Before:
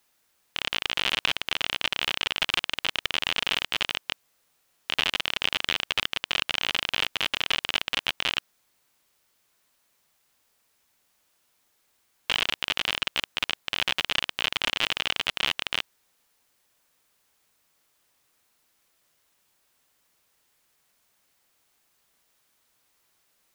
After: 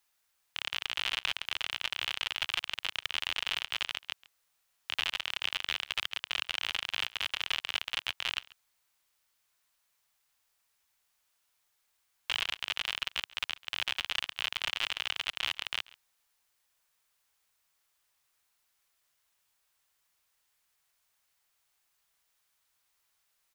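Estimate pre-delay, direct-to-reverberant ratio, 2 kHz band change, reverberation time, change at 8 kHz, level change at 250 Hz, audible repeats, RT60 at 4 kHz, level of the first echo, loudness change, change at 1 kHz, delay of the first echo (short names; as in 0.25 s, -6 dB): none, none, -6.5 dB, none, -6.5 dB, -16.5 dB, 1, none, -22.0 dB, -6.5 dB, -8.0 dB, 0.137 s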